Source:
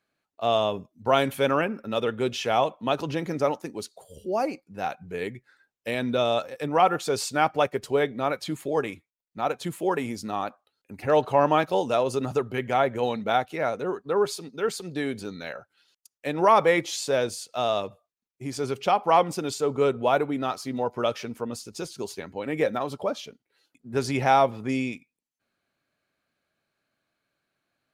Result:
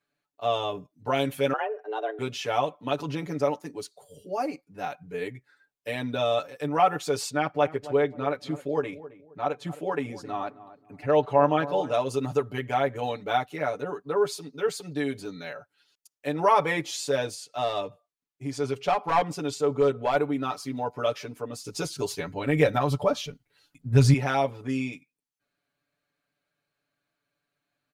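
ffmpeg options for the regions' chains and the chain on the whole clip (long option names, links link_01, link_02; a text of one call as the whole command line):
ffmpeg -i in.wav -filter_complex "[0:a]asettb=1/sr,asplit=3[link_01][link_02][link_03];[link_01]atrim=end=1.534[link_04];[link_02]atrim=start=1.53:end=2.19,asetpts=PTS-STARTPTS,afade=type=in:duration=0.004:curve=qsin,afade=type=out:start_time=0.656:duration=0.004:curve=qsin,lowpass=frequency=1100:poles=1,afreqshift=210[link_05];[link_03]atrim=start=2.186[link_06];[link_04][link_05]acrossfade=duration=0.004:curve1=hsin:curve2=qsin[link_07];[link_07][link_06]acrossfade=duration=0.004:curve1=qsin:curve2=hsin,asettb=1/sr,asplit=3[link_08][link_09][link_10];[link_08]atrim=end=7.304[link_11];[link_09]atrim=start=7.3:end=11.94,asetpts=PTS-STARTPTS,afade=type=in:duration=0.004:curve=qsin,afade=type=out:start_time=4.636:duration=0.004:curve=qsin,aemphasis=mode=reproduction:type=50kf,asplit=2[link_12][link_13];[link_13]adelay=266,lowpass=frequency=1100:poles=1,volume=-15dB,asplit=2[link_14][link_15];[link_15]adelay=266,lowpass=frequency=1100:poles=1,volume=0.3,asplit=2[link_16][link_17];[link_17]adelay=266,lowpass=frequency=1100:poles=1,volume=0.3[link_18];[link_12][link_14][link_16][link_18]amix=inputs=4:normalize=0,atrim=end_sample=204624[link_19];[link_10]atrim=start=11.936[link_20];[link_11][link_19]acrossfade=duration=0.004:curve1=hsin:curve2=qsin[link_21];[link_21][link_20]acrossfade=duration=0.004:curve1=qsin:curve2=hsin,asettb=1/sr,asplit=3[link_22][link_23][link_24];[link_22]atrim=end=17.344[link_25];[link_23]atrim=start=17.34:end=20.16,asetpts=PTS-STARTPTS,afade=type=in:duration=0.004:curve=qsin,afade=type=out:start_time=2.816:duration=0.004:curve=qsin,aeval=exprs='clip(val(0),-1,0.158)':channel_layout=same,highshelf=frequency=11000:gain=-8.5[link_26];[link_24]atrim=start=20.156[link_27];[link_25][link_26]acrossfade=duration=0.004:curve1=hsin:curve2=qsin[link_28];[link_28][link_27]acrossfade=duration=0.004:curve1=qsin:curve2=hsin,asettb=1/sr,asplit=3[link_29][link_30][link_31];[link_29]atrim=end=21.644[link_32];[link_30]atrim=start=21.64:end=24.14,asetpts=PTS-STARTPTS,afade=type=in:duration=0.004:curve=qsin,afade=type=out:start_time=2.496:duration=0.004:curve=qsin,asubboost=boost=11.5:cutoff=130,acontrast=74[link_33];[link_31]atrim=start=24.136[link_34];[link_32][link_33]acrossfade=duration=0.004:curve1=hsin:curve2=qsin[link_35];[link_35][link_34]acrossfade=duration=0.004:curve1=qsin:curve2=hsin,aecho=1:1:6.9:1,dynaudnorm=framelen=890:gausssize=13:maxgain=11.5dB,volume=-6dB" out.wav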